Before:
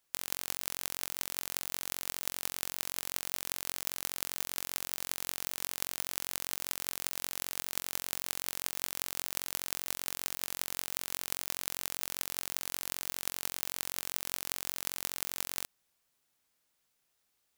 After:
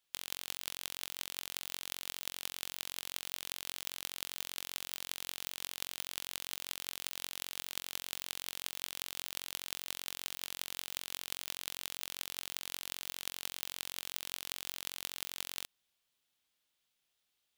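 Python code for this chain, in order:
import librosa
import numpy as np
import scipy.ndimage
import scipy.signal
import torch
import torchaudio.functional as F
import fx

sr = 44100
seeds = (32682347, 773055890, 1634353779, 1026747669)

y = fx.peak_eq(x, sr, hz=3300.0, db=9.0, octaves=0.9)
y = F.gain(torch.from_numpy(y), -6.5).numpy()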